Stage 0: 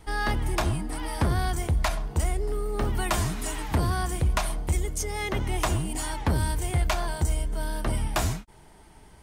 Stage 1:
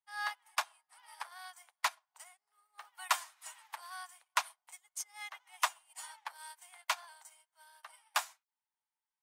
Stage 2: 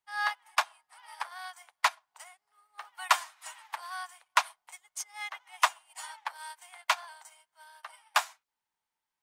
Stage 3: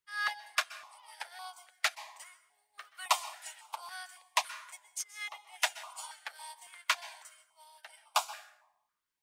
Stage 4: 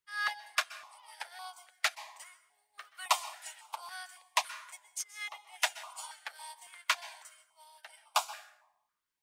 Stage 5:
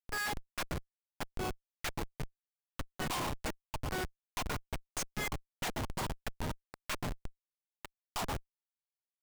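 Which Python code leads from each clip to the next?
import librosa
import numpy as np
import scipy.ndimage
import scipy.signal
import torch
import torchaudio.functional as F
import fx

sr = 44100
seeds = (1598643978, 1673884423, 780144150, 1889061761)

y1 = scipy.signal.sosfilt(scipy.signal.butter(6, 820.0, 'highpass', fs=sr, output='sos'), x)
y1 = fx.upward_expand(y1, sr, threshold_db=-51.0, expansion=2.5)
y2 = fx.high_shelf(y1, sr, hz=6200.0, db=-8.0)
y2 = y2 * 10.0 ** (7.5 / 20.0)
y3 = fx.rev_plate(y2, sr, seeds[0], rt60_s=0.86, hf_ratio=0.6, predelay_ms=115, drr_db=14.5)
y3 = fx.filter_held_notch(y3, sr, hz=3.6, low_hz=780.0, high_hz=1800.0)
y4 = y3
y5 = fx.schmitt(y4, sr, flips_db=-39.5)
y5 = y5 * 10.0 ** (4.5 / 20.0)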